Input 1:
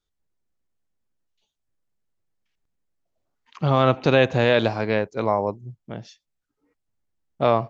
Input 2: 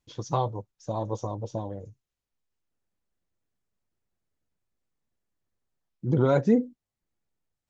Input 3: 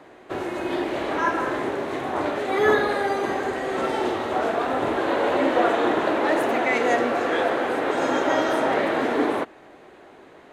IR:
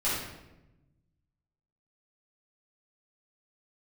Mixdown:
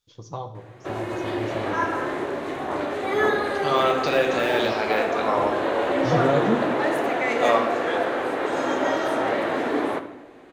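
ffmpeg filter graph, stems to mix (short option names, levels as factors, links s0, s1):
-filter_complex "[0:a]deesser=0.85,highpass=290,tiltshelf=f=1300:g=-6,volume=0.794,asplit=2[s0][s1];[s1]volume=0.376[s2];[1:a]dynaudnorm=f=280:g=11:m=2.82,volume=0.398,asplit=2[s3][s4];[s4]volume=0.158[s5];[2:a]adelay=550,volume=0.708,asplit=2[s6][s7];[s7]volume=0.141[s8];[3:a]atrim=start_sample=2205[s9];[s2][s5][s8]amix=inputs=3:normalize=0[s10];[s10][s9]afir=irnorm=-1:irlink=0[s11];[s0][s3][s6][s11]amix=inputs=4:normalize=0"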